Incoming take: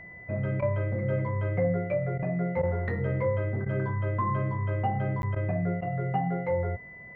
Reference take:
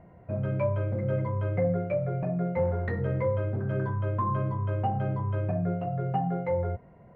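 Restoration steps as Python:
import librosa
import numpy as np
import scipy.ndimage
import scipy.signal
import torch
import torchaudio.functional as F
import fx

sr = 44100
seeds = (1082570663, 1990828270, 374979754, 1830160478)

y = fx.notch(x, sr, hz=2000.0, q=30.0)
y = fx.fix_interpolate(y, sr, at_s=(5.22,), length_ms=11.0)
y = fx.fix_interpolate(y, sr, at_s=(0.61, 2.18, 2.62, 3.65, 5.35, 5.81), length_ms=11.0)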